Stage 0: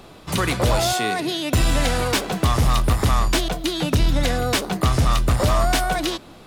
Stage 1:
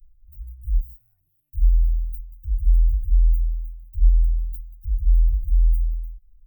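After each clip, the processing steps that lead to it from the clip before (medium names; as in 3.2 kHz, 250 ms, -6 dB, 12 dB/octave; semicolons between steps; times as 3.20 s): inverse Chebyshev band-stop 190–8900 Hz, stop band 70 dB; trim +7 dB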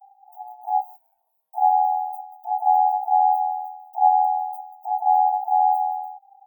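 ring modulator 790 Hz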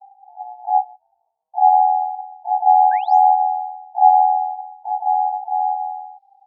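painted sound rise, 2.91–3.23 s, 1.5–10 kHz -18 dBFS; low-pass sweep 780 Hz -> 4.6 kHz, 4.63–5.75 s; trim -2 dB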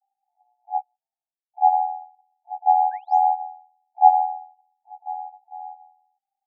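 upward expansion 2.5:1, over -29 dBFS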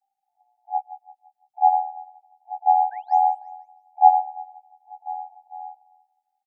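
feedback delay 169 ms, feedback 40%, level -14 dB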